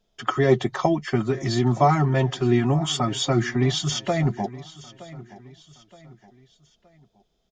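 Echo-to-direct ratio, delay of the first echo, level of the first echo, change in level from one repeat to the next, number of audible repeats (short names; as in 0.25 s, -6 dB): -17.5 dB, 0.92 s, -18.5 dB, -7.5 dB, 3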